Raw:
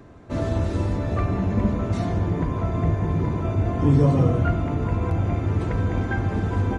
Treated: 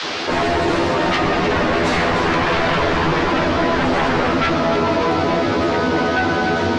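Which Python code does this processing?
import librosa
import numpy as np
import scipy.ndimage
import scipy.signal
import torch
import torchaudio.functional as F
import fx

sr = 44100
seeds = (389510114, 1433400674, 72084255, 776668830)

p1 = fx.doppler_pass(x, sr, speed_mps=17, closest_m=14.0, pass_at_s=2.5)
p2 = scipy.signal.sosfilt(scipy.signal.butter(2, 340.0, 'highpass', fs=sr, output='sos'), p1)
p3 = fx.rider(p2, sr, range_db=5, speed_s=0.5)
p4 = p2 + F.gain(torch.from_numpy(p3), -1.0).numpy()
p5 = fx.fold_sine(p4, sr, drive_db=14, ceiling_db=-15.0)
p6 = fx.granulator(p5, sr, seeds[0], grain_ms=115.0, per_s=22.0, spray_ms=11.0, spread_st=0)
p7 = fx.dmg_noise_band(p6, sr, seeds[1], low_hz=630.0, high_hz=5100.0, level_db=-35.0)
p8 = fx.air_absorb(p7, sr, metres=70.0)
p9 = fx.doubler(p8, sr, ms=12.0, db=-3.0)
p10 = p9 + 10.0 ** (-8.5 / 20.0) * np.pad(p9, (int(301 * sr / 1000.0), 0))[:len(p9)]
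y = fx.env_flatten(p10, sr, amount_pct=50)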